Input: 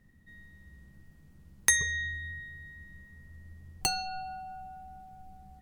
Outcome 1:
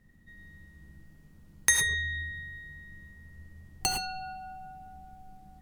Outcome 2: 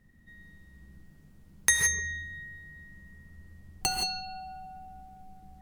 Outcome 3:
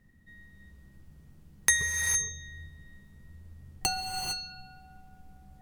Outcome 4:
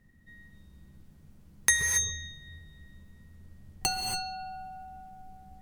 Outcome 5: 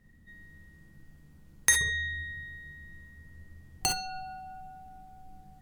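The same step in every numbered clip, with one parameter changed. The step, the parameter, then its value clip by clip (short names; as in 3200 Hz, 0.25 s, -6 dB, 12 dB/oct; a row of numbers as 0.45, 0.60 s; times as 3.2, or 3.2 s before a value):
non-linear reverb, gate: 130, 190, 480, 300, 80 ms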